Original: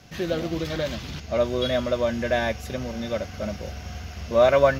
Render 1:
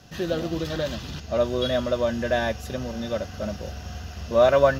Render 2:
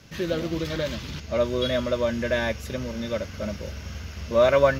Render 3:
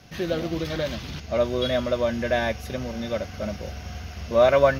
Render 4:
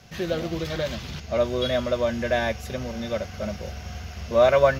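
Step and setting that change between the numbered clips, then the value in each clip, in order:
notch, frequency: 2200, 730, 7400, 290 Hz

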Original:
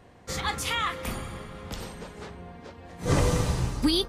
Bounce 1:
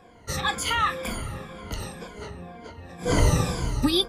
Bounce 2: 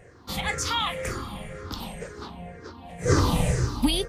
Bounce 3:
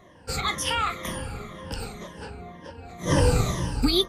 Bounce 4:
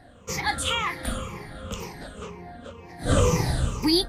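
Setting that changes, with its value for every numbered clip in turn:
moving spectral ripple, ripples per octave: 1.8, 0.51, 1.2, 0.78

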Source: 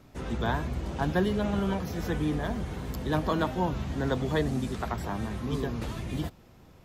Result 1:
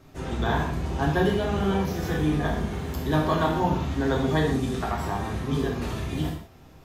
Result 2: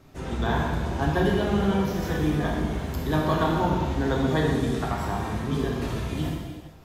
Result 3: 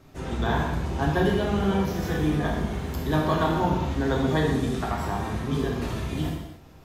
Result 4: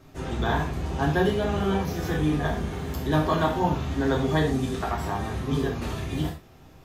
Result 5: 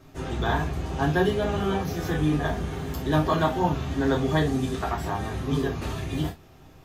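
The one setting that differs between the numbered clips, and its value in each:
non-linear reverb, gate: 210, 490, 330, 140, 90 ms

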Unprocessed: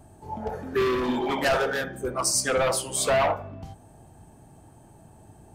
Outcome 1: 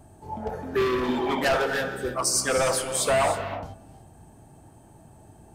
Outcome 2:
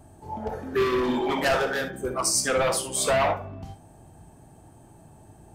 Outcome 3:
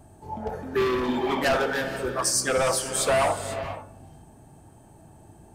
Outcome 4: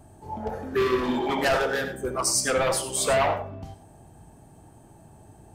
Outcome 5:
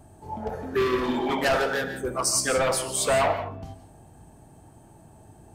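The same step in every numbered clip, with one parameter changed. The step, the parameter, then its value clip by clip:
non-linear reverb, gate: 340, 80, 520, 120, 190 ms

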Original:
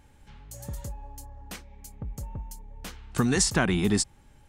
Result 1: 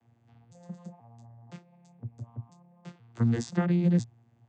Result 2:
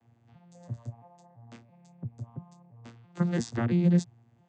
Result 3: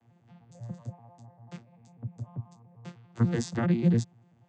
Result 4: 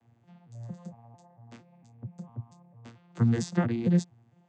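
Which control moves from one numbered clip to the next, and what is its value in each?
arpeggiated vocoder, a note every: 497, 337, 98, 227 ms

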